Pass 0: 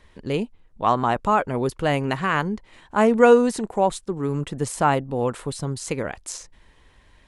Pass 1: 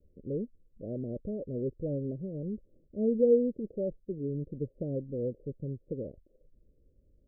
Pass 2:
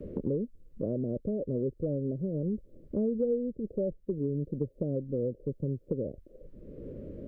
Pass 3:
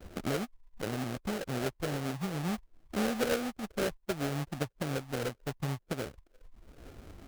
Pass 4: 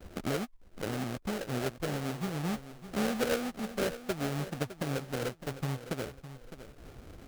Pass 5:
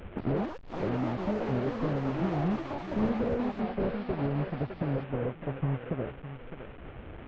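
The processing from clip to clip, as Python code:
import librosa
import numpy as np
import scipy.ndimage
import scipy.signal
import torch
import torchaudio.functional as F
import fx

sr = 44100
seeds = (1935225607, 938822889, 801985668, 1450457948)

y1 = scipy.signal.sosfilt(scipy.signal.butter(16, 580.0, 'lowpass', fs=sr, output='sos'), x)
y1 = F.gain(torch.from_numpy(y1), -9.0).numpy()
y2 = fx.band_squash(y1, sr, depth_pct=100)
y2 = F.gain(torch.from_numpy(y2), 2.0).numpy()
y3 = fx.bin_expand(y2, sr, power=1.5)
y3 = fx.sample_hold(y3, sr, seeds[0], rate_hz=1000.0, jitter_pct=20)
y4 = fx.echo_feedback(y3, sr, ms=609, feedback_pct=31, wet_db=-13.0)
y5 = fx.delta_mod(y4, sr, bps=16000, step_db=-46.5)
y5 = fx.echo_pitch(y5, sr, ms=184, semitones=7, count=2, db_per_echo=-6.0)
y5 = F.gain(torch.from_numpy(y5), 4.5).numpy()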